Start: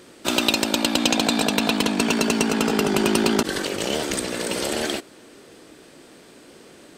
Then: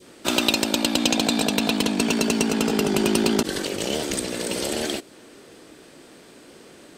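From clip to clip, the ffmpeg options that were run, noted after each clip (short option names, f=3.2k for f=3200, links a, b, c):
-af "adynamicequalizer=threshold=0.0112:dfrequency=1300:dqfactor=0.8:tfrequency=1300:tqfactor=0.8:attack=5:release=100:ratio=0.375:range=2.5:mode=cutabove:tftype=bell"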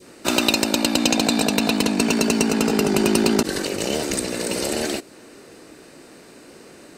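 -af "bandreject=f=3.3k:w=6,volume=2.5dB"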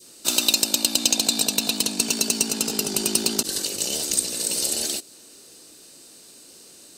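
-af "aexciter=amount=5.1:drive=5.9:freq=3k,volume=-11dB"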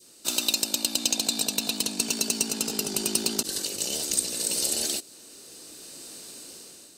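-af "dynaudnorm=f=340:g=5:m=11.5dB,volume=-5.5dB"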